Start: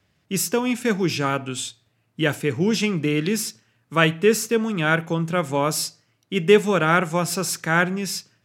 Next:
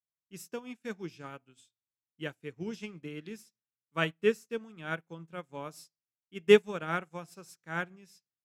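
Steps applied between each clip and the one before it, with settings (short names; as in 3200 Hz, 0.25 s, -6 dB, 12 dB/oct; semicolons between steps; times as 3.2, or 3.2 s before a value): upward expander 2.5:1, over -36 dBFS; gain -4 dB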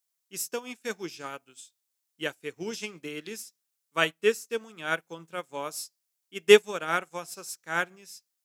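tone controls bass -13 dB, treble +9 dB; in parallel at -2 dB: vocal rider within 4 dB 0.5 s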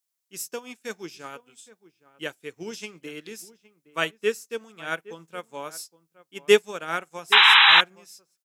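outdoor echo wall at 140 m, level -18 dB; painted sound noise, 7.32–7.81, 780–4000 Hz -13 dBFS; gain -1 dB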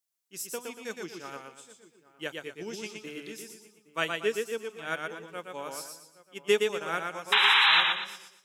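compressor 2:1, threshold -19 dBFS, peak gain reduction 5 dB; warbling echo 0.118 s, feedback 36%, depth 59 cents, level -4 dB; gain -3.5 dB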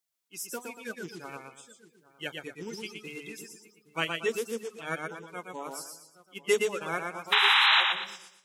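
bin magnitudes rounded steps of 30 dB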